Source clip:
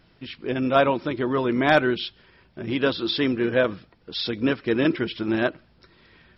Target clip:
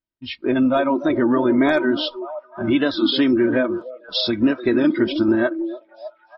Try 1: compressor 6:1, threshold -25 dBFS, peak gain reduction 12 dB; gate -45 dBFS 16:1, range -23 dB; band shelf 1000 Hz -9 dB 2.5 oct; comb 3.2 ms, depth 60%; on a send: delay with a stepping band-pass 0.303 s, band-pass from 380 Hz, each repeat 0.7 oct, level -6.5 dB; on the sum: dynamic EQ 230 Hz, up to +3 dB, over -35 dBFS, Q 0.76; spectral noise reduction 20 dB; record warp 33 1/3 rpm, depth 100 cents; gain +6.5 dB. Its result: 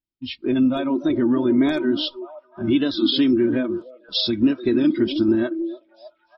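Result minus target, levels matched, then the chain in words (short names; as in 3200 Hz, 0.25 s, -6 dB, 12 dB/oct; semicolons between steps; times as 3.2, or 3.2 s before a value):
1000 Hz band -7.5 dB
compressor 6:1, threshold -25 dBFS, peak gain reduction 12 dB; gate -45 dBFS 16:1, range -23 dB; comb 3.2 ms, depth 60%; on a send: delay with a stepping band-pass 0.303 s, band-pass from 380 Hz, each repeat 0.7 oct, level -6.5 dB; on the sum: dynamic EQ 230 Hz, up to +3 dB, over -35 dBFS, Q 0.76; spectral noise reduction 20 dB; record warp 33 1/3 rpm, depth 100 cents; gain +6.5 dB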